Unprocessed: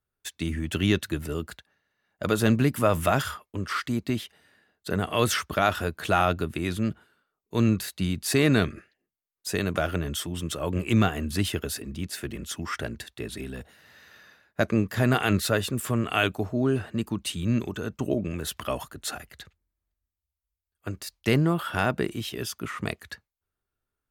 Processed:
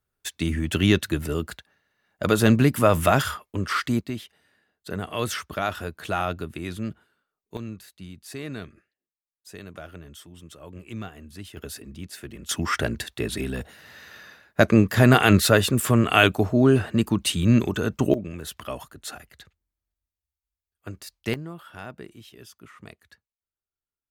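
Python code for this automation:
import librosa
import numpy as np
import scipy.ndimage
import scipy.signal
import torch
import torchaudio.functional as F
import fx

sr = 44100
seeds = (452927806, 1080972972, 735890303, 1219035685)

y = fx.gain(x, sr, db=fx.steps((0.0, 4.0), (4.01, -4.0), (7.57, -14.0), (11.57, -5.0), (12.49, 7.0), (18.14, -3.5), (21.34, -14.0)))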